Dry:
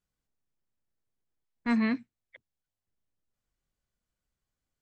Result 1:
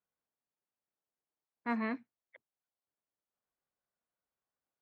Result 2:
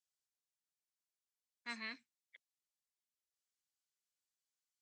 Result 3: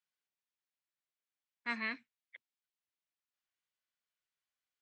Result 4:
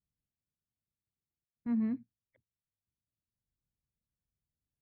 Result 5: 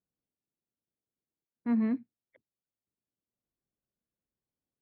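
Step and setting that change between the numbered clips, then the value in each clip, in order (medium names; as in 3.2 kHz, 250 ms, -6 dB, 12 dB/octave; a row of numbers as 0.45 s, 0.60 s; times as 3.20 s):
band-pass filter, frequency: 820 Hz, 6.5 kHz, 2.6 kHz, 110 Hz, 300 Hz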